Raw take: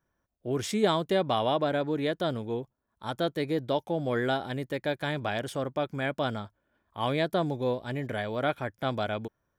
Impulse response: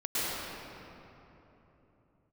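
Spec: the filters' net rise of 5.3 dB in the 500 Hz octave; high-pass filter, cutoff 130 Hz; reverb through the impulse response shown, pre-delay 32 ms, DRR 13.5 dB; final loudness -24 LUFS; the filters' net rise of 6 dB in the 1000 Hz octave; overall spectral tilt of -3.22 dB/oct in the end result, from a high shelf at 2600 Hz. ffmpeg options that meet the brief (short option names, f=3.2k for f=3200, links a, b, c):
-filter_complex "[0:a]highpass=130,equalizer=f=500:t=o:g=4.5,equalizer=f=1k:t=o:g=5.5,highshelf=f=2.6k:g=6.5,asplit=2[a][b];[1:a]atrim=start_sample=2205,adelay=32[c];[b][c]afir=irnorm=-1:irlink=0,volume=-23.5dB[d];[a][d]amix=inputs=2:normalize=0,volume=1.5dB"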